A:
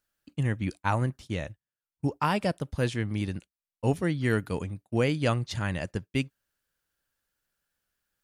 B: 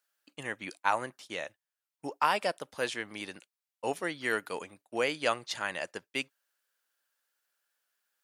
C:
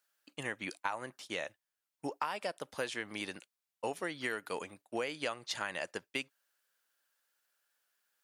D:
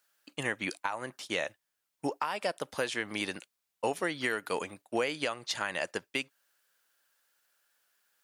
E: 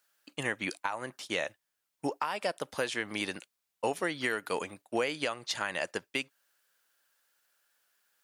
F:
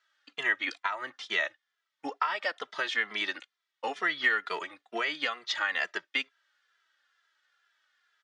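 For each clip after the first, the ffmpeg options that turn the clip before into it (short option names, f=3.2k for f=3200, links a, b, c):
-af "highpass=570,volume=1.5dB"
-af "acompressor=threshold=-33dB:ratio=10,volume=1dB"
-af "alimiter=limit=-23dB:level=0:latency=1:release=287,volume=6dB"
-af anull
-filter_complex "[0:a]highpass=360,equalizer=f=520:t=q:w=4:g=-5,equalizer=f=1.3k:t=q:w=4:g=8,equalizer=f=1.9k:t=q:w=4:g=10,equalizer=f=3.4k:t=q:w=4:g=8,lowpass=f=6k:w=0.5412,lowpass=f=6k:w=1.3066,asplit=2[a][b];[b]adelay=2.6,afreqshift=-2.2[c];[a][c]amix=inputs=2:normalize=1,volume=1.5dB"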